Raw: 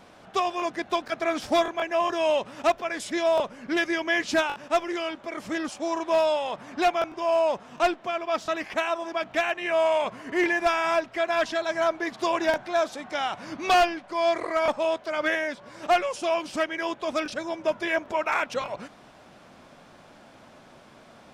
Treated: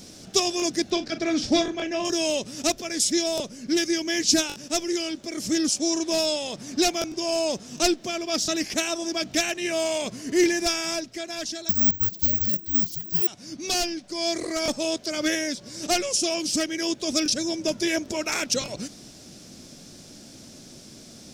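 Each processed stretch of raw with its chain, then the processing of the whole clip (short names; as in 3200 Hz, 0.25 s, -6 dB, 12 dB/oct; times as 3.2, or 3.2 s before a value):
0.9–2.05 LPF 3700 Hz + doubler 40 ms -12 dB
11.69–13.27 comb 5.4 ms, depth 53% + frequency shift -420 Hz + careless resampling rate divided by 2×, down none, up zero stuff
whole clip: EQ curve 320 Hz 0 dB, 990 Hz -19 dB, 3200 Hz -4 dB, 5500 Hz +12 dB, 9500 Hz +8 dB; vocal rider 2 s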